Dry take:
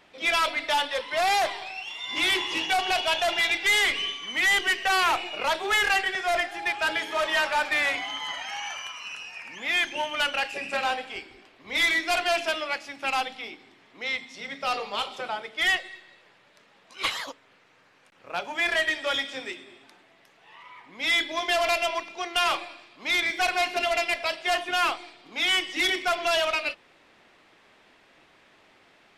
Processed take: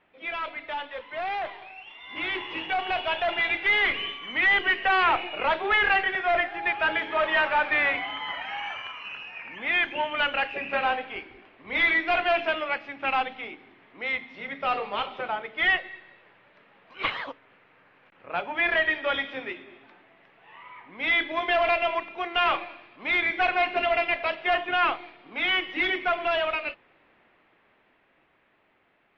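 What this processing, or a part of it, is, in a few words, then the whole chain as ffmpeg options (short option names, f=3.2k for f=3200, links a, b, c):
action camera in a waterproof case: -af "lowpass=f=2.8k:w=0.5412,lowpass=f=2.8k:w=1.3066,dynaudnorm=f=450:g=13:m=9.5dB,volume=-7.5dB" -ar 32000 -c:a aac -b:a 48k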